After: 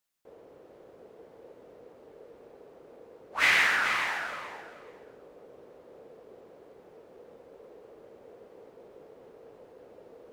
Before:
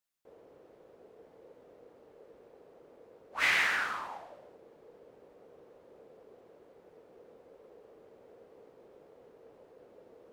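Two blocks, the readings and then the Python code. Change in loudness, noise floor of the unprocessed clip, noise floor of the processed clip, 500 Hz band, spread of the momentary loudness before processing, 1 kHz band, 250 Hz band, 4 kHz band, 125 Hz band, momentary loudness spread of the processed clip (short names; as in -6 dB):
+4.0 dB, -61 dBFS, -55 dBFS, +5.0 dB, 19 LU, +5.0 dB, +5.0 dB, +5.0 dB, +5.0 dB, 20 LU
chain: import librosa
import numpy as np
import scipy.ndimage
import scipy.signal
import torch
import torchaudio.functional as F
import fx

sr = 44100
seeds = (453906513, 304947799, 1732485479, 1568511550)

y = fx.echo_feedback(x, sr, ms=429, feedback_pct=18, wet_db=-8.0)
y = y * 10.0 ** (4.5 / 20.0)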